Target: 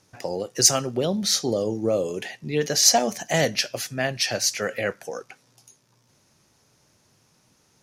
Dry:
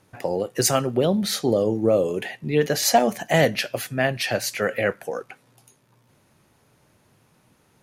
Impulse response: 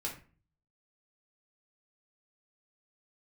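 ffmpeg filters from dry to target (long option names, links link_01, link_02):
-af "equalizer=frequency=5700:width_type=o:width=0.9:gain=13.5,volume=-4dB"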